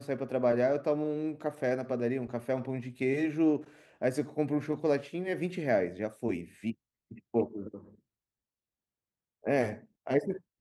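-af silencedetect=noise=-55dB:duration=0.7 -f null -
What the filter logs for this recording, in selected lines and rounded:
silence_start: 7.95
silence_end: 9.44 | silence_duration: 1.49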